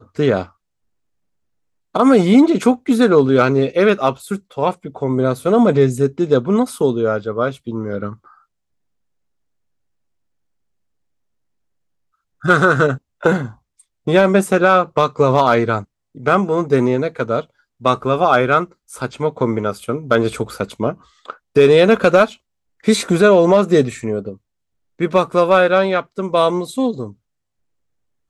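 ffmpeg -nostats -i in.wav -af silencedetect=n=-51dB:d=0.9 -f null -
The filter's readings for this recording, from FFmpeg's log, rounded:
silence_start: 0.52
silence_end: 1.94 | silence_duration: 1.42
silence_start: 8.44
silence_end: 12.41 | silence_duration: 3.97
silence_start: 27.15
silence_end: 28.30 | silence_duration: 1.15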